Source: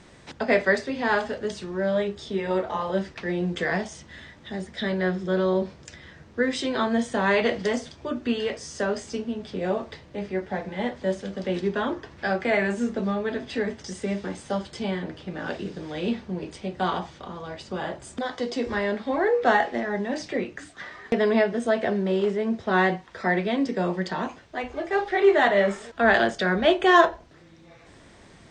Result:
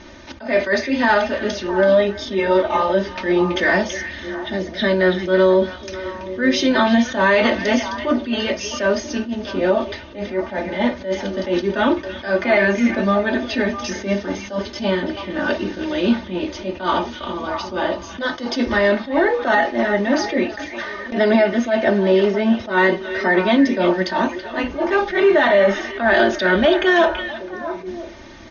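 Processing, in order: brick-wall FIR low-pass 6.7 kHz; comb 3.3 ms, depth 85%; peak limiter -14.5 dBFS, peak gain reduction 10.5 dB; repeats whose band climbs or falls 330 ms, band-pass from 2.7 kHz, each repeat -1.4 oct, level -6 dB; attacks held to a fixed rise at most 160 dB/s; trim +8 dB

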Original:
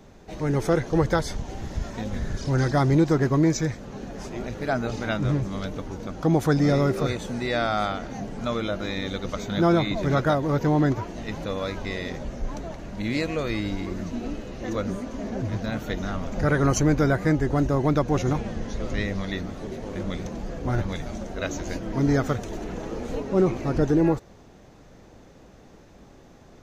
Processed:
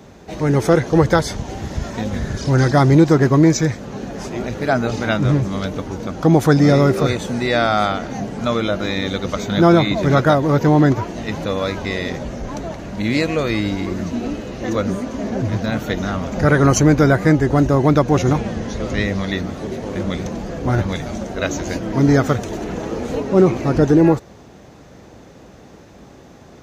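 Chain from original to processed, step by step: high-pass 61 Hz; trim +8 dB

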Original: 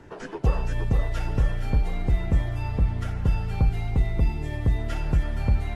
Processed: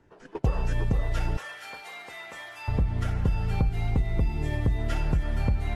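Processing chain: gate -32 dBFS, range -16 dB; 1.37–2.68 s: high-pass 1.1 kHz 12 dB/octave; compression, threshold -23 dBFS, peak gain reduction 8 dB; trim +2.5 dB

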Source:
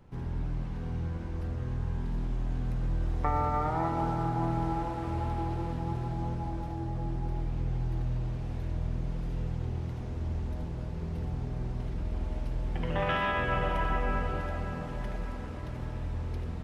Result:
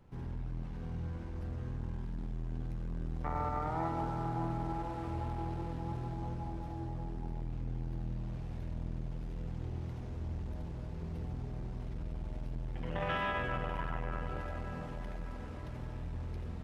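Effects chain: transformer saturation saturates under 310 Hz; trim -4.5 dB

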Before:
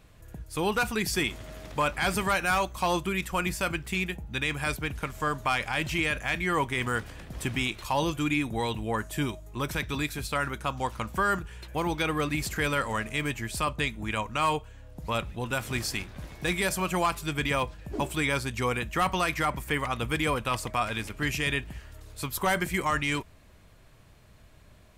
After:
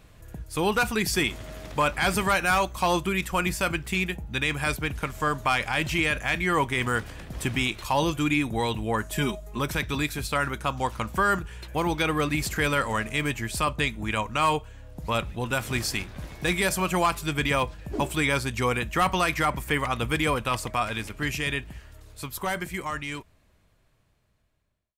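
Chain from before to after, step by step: fade out at the end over 4.97 s; 9.11–9.59 s: comb 4.8 ms, depth 67%; trim +3 dB

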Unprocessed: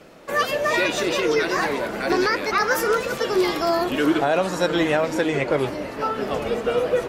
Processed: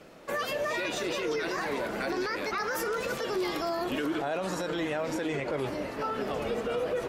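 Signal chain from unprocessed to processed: peak limiter -18.5 dBFS, peak gain reduction 10.5 dB; trim -4.5 dB

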